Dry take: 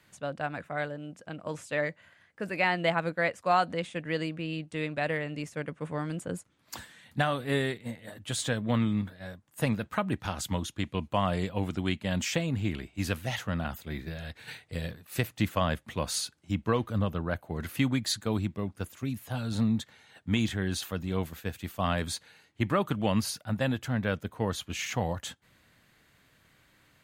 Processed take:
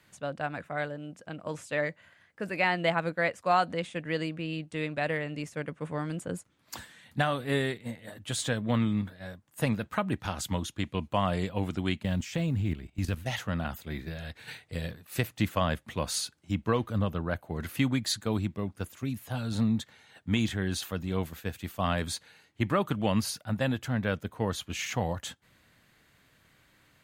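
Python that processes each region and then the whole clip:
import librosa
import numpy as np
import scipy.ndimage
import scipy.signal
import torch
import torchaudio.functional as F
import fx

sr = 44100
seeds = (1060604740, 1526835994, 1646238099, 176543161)

y = fx.chain(x, sr, fx.block_float(bits=7),
    fx.low_shelf(hz=210.0, db=10.0),
    fx.level_steps(step_db=14), at=(12.03, 13.26))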